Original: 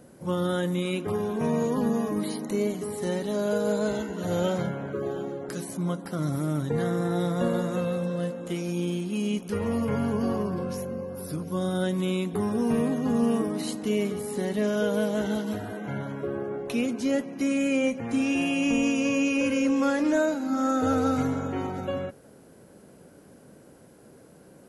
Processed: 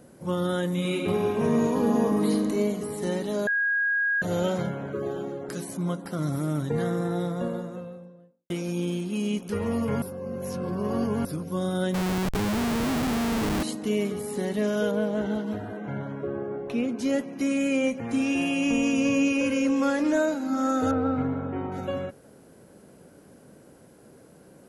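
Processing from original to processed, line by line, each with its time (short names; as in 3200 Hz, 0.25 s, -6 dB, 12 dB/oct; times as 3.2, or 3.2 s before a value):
0.68–2.32 reverb throw, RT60 2.7 s, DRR 0.5 dB
3.47–4.22 bleep 1640 Hz -21.5 dBFS
6.71–8.5 studio fade out
10.02–11.25 reverse
11.94–13.63 Schmitt trigger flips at -29.5 dBFS
14.91–16.99 LPF 1900 Hz 6 dB/oct
18.93–19.33 low shelf 190 Hz +7 dB
20.91–21.72 air absorption 500 m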